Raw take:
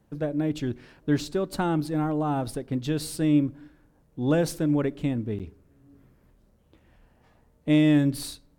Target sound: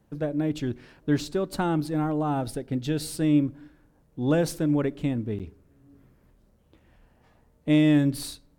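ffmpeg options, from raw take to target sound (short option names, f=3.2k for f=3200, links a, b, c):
-filter_complex "[0:a]asettb=1/sr,asplit=3[a][b][c];[a]atrim=end=2.414[d];[b]atrim=start=2.41:end=3.08,asetpts=PTS-STARTPTS,afade=t=in:d=0.004:c=qsin,afade=t=out:st=0.666:d=0.004:c=qsin,asuperstop=centerf=1100:order=4:qfactor=5[e];[c]atrim=start=3.076[f];[d][e]acrossfade=d=0.004:c1=hsin:c2=qsin[g];[g][f]acrossfade=d=0.004:c1=qsin:c2=hsin"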